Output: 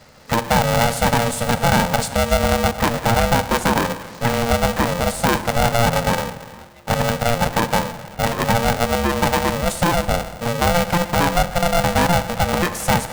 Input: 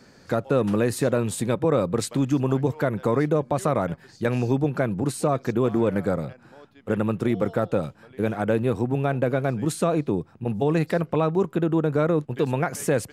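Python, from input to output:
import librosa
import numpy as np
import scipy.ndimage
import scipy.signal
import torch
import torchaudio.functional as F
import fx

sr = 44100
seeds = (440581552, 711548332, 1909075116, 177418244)

y = fx.rev_schroeder(x, sr, rt60_s=1.7, comb_ms=27, drr_db=10.0)
y = y * np.sign(np.sin(2.0 * np.pi * 350.0 * np.arange(len(y)) / sr))
y = y * 10.0 ** (4.5 / 20.0)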